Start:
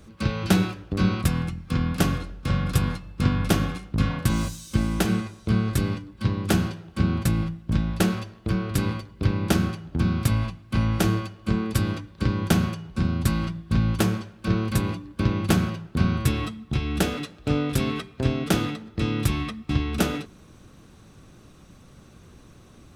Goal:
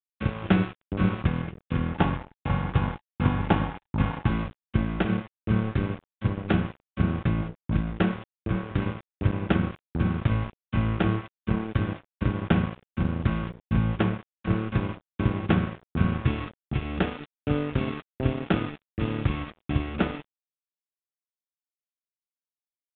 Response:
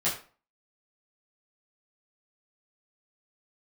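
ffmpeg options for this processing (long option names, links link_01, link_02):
-filter_complex "[0:a]lowpass=frequency=3000:width=0.5412,lowpass=frequency=3000:width=1.3066,aeval=exprs='sgn(val(0))*max(abs(val(0))-0.0251,0)':channel_layout=same,asettb=1/sr,asplit=3[link_01][link_02][link_03];[link_01]atrim=end=1.944[link_04];[link_02]atrim=start=1.94:end=4.29,asetpts=PTS-STARTPTS,afade=type=in:duration=0.004:curve=qsin,afade=type=out:start_time=2.346:duration=0.004:curve=qsin,equalizer=frequency=860:width=4.8:gain=12.5[link_05];[link_03]atrim=start=4.286[link_06];[link_04][link_05]acrossfade=duration=0.004:curve1=hsin:curve2=qsin[link_07];[link_07][link_06]acrossfade=duration=0.004:curve1=qsin:curve2=hsin" -ar 8000 -c:a pcm_mulaw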